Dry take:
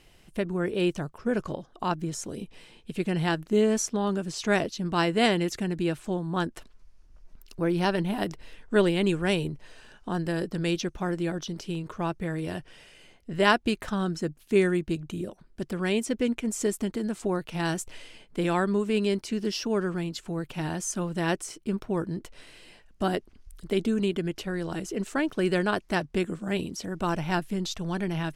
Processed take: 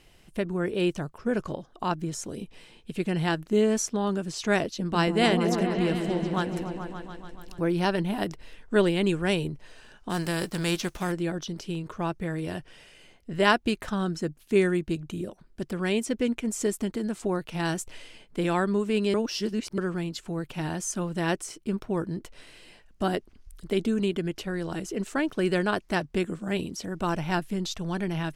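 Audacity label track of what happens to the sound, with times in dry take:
4.640000	7.610000	echo whose low-pass opens from repeat to repeat 144 ms, low-pass from 400 Hz, each repeat up 1 octave, level −3 dB
10.090000	11.110000	spectral envelope flattened exponent 0.6
19.140000	19.780000	reverse

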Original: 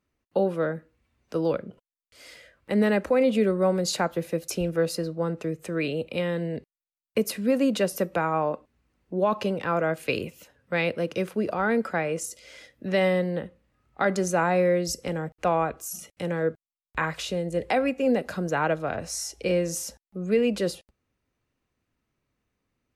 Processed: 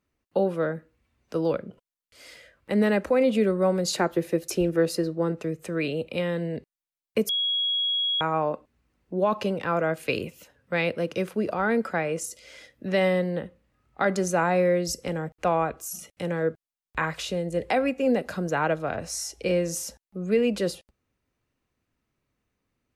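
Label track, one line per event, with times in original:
3.960000	5.320000	hollow resonant body resonances 360/1,800 Hz, height 9 dB
7.290000	8.210000	beep over 3,320 Hz −22.5 dBFS

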